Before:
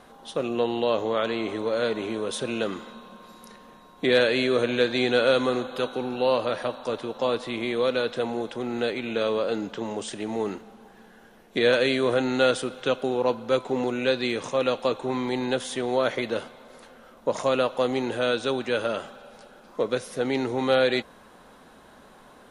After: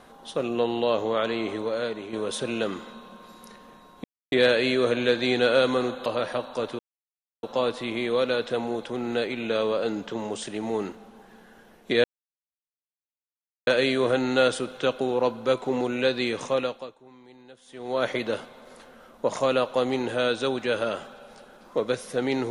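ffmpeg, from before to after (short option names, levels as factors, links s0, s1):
-filter_complex "[0:a]asplit=8[s0][s1][s2][s3][s4][s5][s6][s7];[s0]atrim=end=2.13,asetpts=PTS-STARTPTS,afade=t=out:st=1.49:d=0.64:silence=0.375837[s8];[s1]atrim=start=2.13:end=4.04,asetpts=PTS-STARTPTS,afade=t=in:d=0.004:c=hsin:silence=0.375837,afade=t=out:st=1.906:d=0.004:c=hsin,apad=pad_dur=0.28[s9];[s2]atrim=start=4.04:end=5.782,asetpts=PTS-STARTPTS,afade=t=in:d=0.004:c=hsin[s10];[s3]atrim=start=6.358:end=7.09,asetpts=PTS-STARTPTS,afade=t=out:st=0.728:d=0.004:c=hsin,apad=pad_dur=0.64[s11];[s4]atrim=start=7.09:end=11.7,asetpts=PTS-STARTPTS,afade=t=in:d=0.004:c=hsin,afade=t=out:st=4.606:d=0.004:c=hsin,apad=pad_dur=1.63[s12];[s5]atrim=start=11.7:end=15.06,asetpts=PTS-STARTPTS,afade=t=in:d=0.004:c=hsin,afade=t=out:st=2.88:d=0.48:c=qua:silence=0.0668344[s13];[s6]atrim=start=15.06:end=15.6,asetpts=PTS-STARTPTS,volume=0.0668[s14];[s7]atrim=start=15.6,asetpts=PTS-STARTPTS,afade=t=in:d=0.48:c=qua:silence=0.0668344[s15];[s8][s9][s10]concat=n=3:v=0:a=1[s16];[s11][s12][s13][s14][s15]concat=n=5:v=0:a=1[s17];[s16][s17]acrossfade=d=0.004:c1=hsin:c2=hsin"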